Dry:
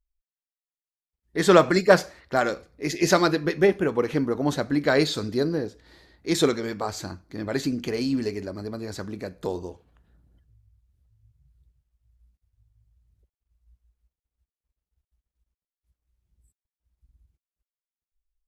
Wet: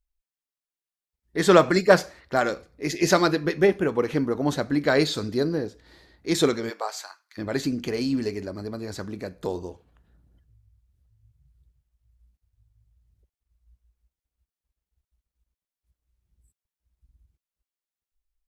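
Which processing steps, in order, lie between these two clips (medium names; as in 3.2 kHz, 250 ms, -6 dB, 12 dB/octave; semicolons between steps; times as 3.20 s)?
6.69–7.37 s: high-pass 370 Hz -> 1.4 kHz 24 dB/octave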